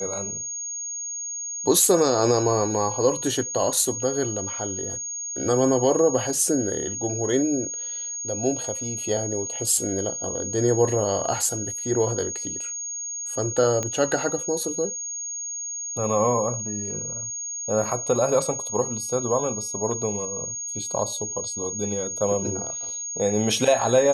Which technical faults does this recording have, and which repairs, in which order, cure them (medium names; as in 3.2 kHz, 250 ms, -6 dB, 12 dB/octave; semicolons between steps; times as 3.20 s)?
whine 6.6 kHz -29 dBFS
13.83 s: pop -13 dBFS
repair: de-click; band-stop 6.6 kHz, Q 30